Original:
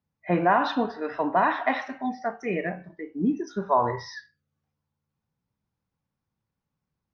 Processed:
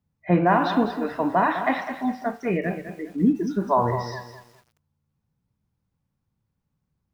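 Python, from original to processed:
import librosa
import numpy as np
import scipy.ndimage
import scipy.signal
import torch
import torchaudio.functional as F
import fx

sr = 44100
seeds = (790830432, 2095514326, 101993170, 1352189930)

y = fx.low_shelf(x, sr, hz=250.0, db=10.0)
y = fx.echo_crushed(y, sr, ms=205, feedback_pct=35, bits=8, wet_db=-10)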